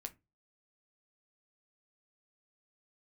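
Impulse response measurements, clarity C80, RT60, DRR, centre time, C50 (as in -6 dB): 29.5 dB, 0.25 s, 6.5 dB, 5 ms, 21.0 dB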